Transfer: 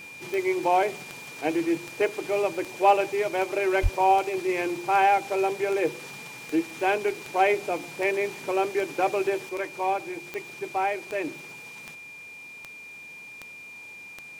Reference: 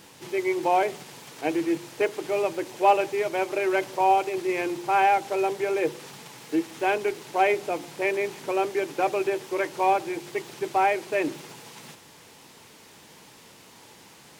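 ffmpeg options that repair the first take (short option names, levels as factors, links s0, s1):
-filter_complex "[0:a]adeclick=t=4,bandreject=f=2400:w=30,asplit=3[s0][s1][s2];[s0]afade=t=out:st=3.82:d=0.02[s3];[s1]highpass=f=140:w=0.5412,highpass=f=140:w=1.3066,afade=t=in:st=3.82:d=0.02,afade=t=out:st=3.94:d=0.02[s4];[s2]afade=t=in:st=3.94:d=0.02[s5];[s3][s4][s5]amix=inputs=3:normalize=0,asetnsamples=n=441:p=0,asendcmd='9.49 volume volume 4.5dB',volume=1"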